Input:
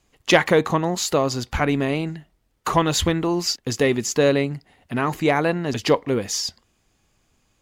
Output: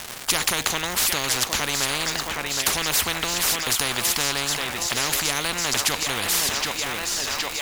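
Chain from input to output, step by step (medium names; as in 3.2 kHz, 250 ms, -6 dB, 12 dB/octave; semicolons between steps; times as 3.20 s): on a send: thinning echo 767 ms, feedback 72%, high-pass 830 Hz, level -15.5 dB; on the sum: gate with hold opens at -35 dBFS; crackle 570 per s -40 dBFS; spectrum-flattening compressor 10:1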